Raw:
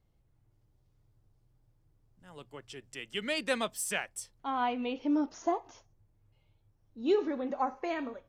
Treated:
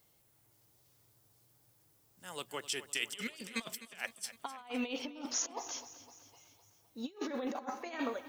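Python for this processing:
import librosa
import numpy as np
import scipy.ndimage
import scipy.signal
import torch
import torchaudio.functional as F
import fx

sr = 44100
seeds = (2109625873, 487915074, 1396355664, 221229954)

y = scipy.signal.sosfilt(scipy.signal.butter(2, 54.0, 'highpass', fs=sr, output='sos'), x)
y = fx.riaa(y, sr, side='recording')
y = fx.over_compress(y, sr, threshold_db=-40.0, ratio=-0.5)
y = fx.echo_feedback(y, sr, ms=255, feedback_pct=56, wet_db=-15.0)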